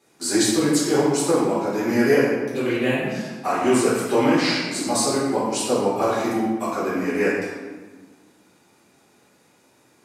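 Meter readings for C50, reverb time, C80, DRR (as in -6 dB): -1.0 dB, 1.4 s, 1.5 dB, -10.0 dB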